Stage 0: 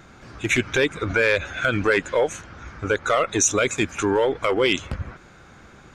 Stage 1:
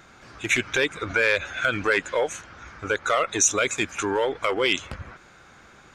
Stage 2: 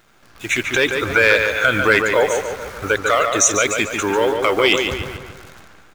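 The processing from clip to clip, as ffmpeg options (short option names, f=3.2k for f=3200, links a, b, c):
-af "lowshelf=f=450:g=-8.5"
-filter_complex "[0:a]dynaudnorm=f=190:g=7:m=16dB,acrusher=bits=7:dc=4:mix=0:aa=0.000001,asplit=2[a][b];[b]adelay=145,lowpass=f=3.8k:p=1,volume=-5dB,asplit=2[c][d];[d]adelay=145,lowpass=f=3.8k:p=1,volume=0.51,asplit=2[e][f];[f]adelay=145,lowpass=f=3.8k:p=1,volume=0.51,asplit=2[g][h];[h]adelay=145,lowpass=f=3.8k:p=1,volume=0.51,asplit=2[i][j];[j]adelay=145,lowpass=f=3.8k:p=1,volume=0.51,asplit=2[k][l];[l]adelay=145,lowpass=f=3.8k:p=1,volume=0.51[m];[c][e][g][i][k][m]amix=inputs=6:normalize=0[n];[a][n]amix=inputs=2:normalize=0,volume=-1dB"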